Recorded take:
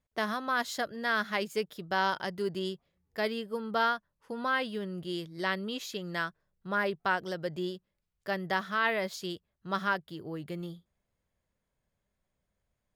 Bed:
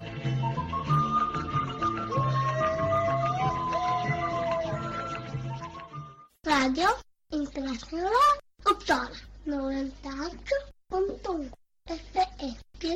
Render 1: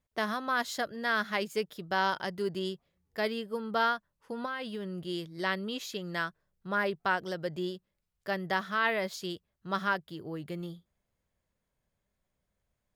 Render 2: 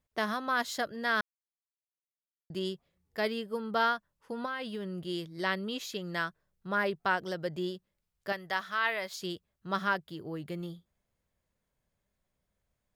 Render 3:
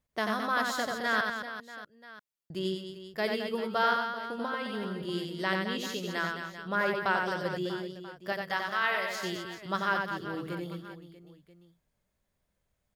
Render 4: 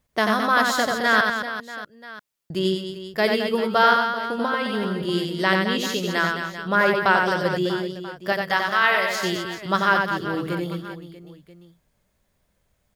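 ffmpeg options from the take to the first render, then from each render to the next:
-filter_complex "[0:a]asettb=1/sr,asplit=3[a][b][c];[a]atrim=end=4.454[d];[b]atrim=start=4.45:end=4.94,asetpts=PTS-STARTPTS,afade=t=in:d=0.004:c=qsin,afade=t=out:st=0.486:d=0.004:c=qsin,acompressor=threshold=-32dB:ratio=10:attack=3.2:release=140:knee=1:detection=peak[e];[c]atrim=start=4.936[f];[d][e]acrossfade=d=0.004:c1=hsin:c2=qsin[g];[g][f]acrossfade=d=0.004:c1=qsin:c2=hsin"
-filter_complex "[0:a]asettb=1/sr,asplit=3[a][b][c];[a]atrim=end=8.324[d];[b]atrim=start=8.32:end=9.21,asetpts=PTS-STARTPTS,afade=t=in:d=0.004:c=qsin,afade=t=out:st=0.886:d=0.004:c=qsin,equalizer=f=220:t=o:w=2.5:g=-11.5[e];[c]atrim=start=9.206[f];[d][e]acrossfade=d=0.004:c1=hsin:c2=qsin[g];[g][f]acrossfade=d=0.004:c1=qsin:c2=hsin,asplit=3[h][i][j];[h]atrim=end=1.21,asetpts=PTS-STARTPTS,afade=t=out:st=1.206:d=0.004:c=hsin[k];[i]atrim=start=1.21:end=2.5,asetpts=PTS-STARTPTS,volume=0[l];[j]atrim=start=2.5,asetpts=PTS-STARTPTS,afade=t=in:d=0.004:c=hsin[m];[k][l][m]concat=n=3:v=0:a=1"
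-af "aecho=1:1:90|216|392.4|639.4|985.1:0.631|0.398|0.251|0.158|0.1"
-af "volume=10dB"

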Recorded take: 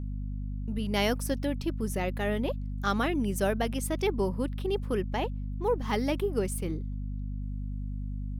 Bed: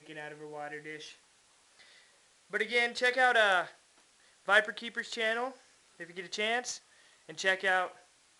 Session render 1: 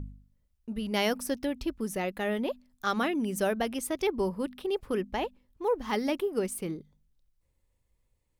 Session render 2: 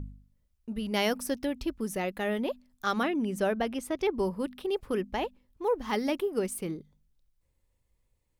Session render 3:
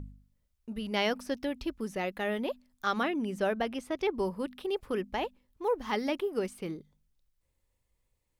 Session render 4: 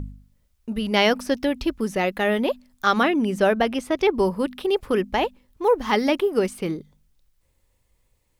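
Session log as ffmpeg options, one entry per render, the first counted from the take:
-af "bandreject=f=50:t=h:w=4,bandreject=f=100:t=h:w=4,bandreject=f=150:t=h:w=4,bandreject=f=200:t=h:w=4,bandreject=f=250:t=h:w=4"
-filter_complex "[0:a]asettb=1/sr,asplit=3[a][b][c];[a]atrim=end=3.034[d];[b]atrim=start=3.03:end=4.15,asetpts=PTS-STARTPTS,afade=t=in:d=0.004:c=qsin,afade=t=out:st=1.116:d=0.004:c=qsin,aemphasis=mode=reproduction:type=cd[e];[c]atrim=start=4.146[f];[d][e]acrossfade=d=0.004:c1=hsin:c2=qsin[g];[g][f]acrossfade=d=0.004:c1=qsin:c2=hsin"
-filter_complex "[0:a]acrossover=split=5400[a][b];[b]acompressor=threshold=-55dB:ratio=4:attack=1:release=60[c];[a][c]amix=inputs=2:normalize=0,lowshelf=f=410:g=-4"
-af "volume=10.5dB"

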